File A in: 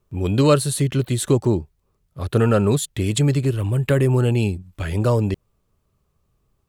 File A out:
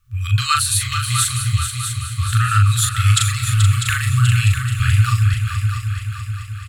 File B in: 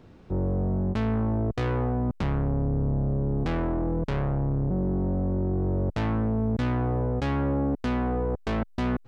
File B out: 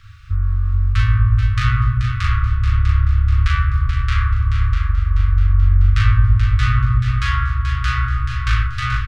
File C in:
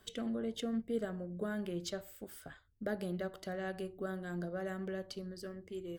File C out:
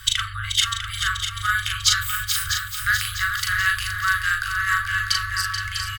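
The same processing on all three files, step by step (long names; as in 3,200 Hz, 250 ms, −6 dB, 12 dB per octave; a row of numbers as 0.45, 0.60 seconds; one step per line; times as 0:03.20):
double-tracking delay 39 ms −3.5 dB
echo machine with several playback heads 216 ms, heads second and third, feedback 58%, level −8 dB
brick-wall band-stop 120–1,100 Hz
normalise the peak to −2 dBFS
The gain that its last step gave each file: +7.0, +12.0, +25.0 decibels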